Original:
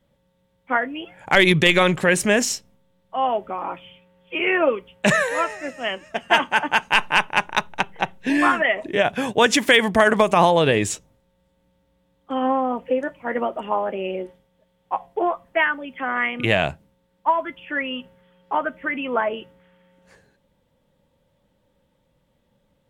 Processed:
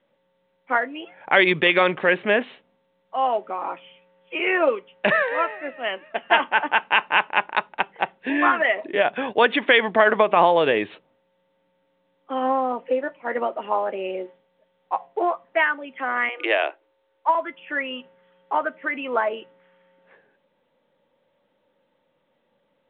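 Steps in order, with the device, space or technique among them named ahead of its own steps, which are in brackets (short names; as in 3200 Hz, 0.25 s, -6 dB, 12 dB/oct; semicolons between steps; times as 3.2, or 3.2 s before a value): 16.29–17.35 Chebyshev high-pass 300 Hz, order 8; telephone (BPF 320–3000 Hz; µ-law 64 kbps 8000 Hz)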